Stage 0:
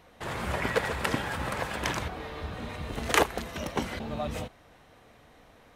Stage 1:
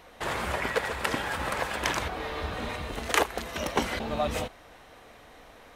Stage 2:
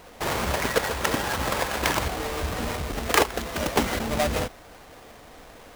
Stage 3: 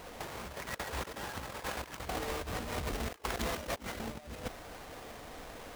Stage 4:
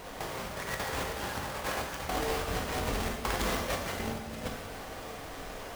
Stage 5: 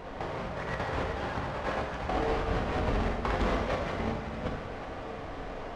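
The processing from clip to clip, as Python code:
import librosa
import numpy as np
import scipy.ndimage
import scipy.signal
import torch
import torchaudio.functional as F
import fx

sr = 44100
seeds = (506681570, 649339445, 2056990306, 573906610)

y1 = fx.peak_eq(x, sr, hz=130.0, db=-8.0, octaves=2.0)
y1 = fx.rider(y1, sr, range_db=4, speed_s=0.5)
y1 = F.gain(torch.from_numpy(y1), 2.5).numpy()
y2 = fx.halfwave_hold(y1, sr)
y3 = fx.over_compress(y2, sr, threshold_db=-32.0, ratio=-0.5)
y3 = F.gain(torch.from_numpy(y3), -6.5).numpy()
y4 = fx.rev_plate(y3, sr, seeds[0], rt60_s=1.2, hf_ratio=1.0, predelay_ms=0, drr_db=0.5)
y4 = F.gain(torch.from_numpy(y4), 2.5).numpy()
y5 = fx.spacing_loss(y4, sr, db_at_10k=28)
y5 = fx.echo_split(y5, sr, split_hz=850.0, low_ms=90, high_ms=369, feedback_pct=52, wet_db=-10.5)
y5 = F.gain(torch.from_numpy(y5), 4.5).numpy()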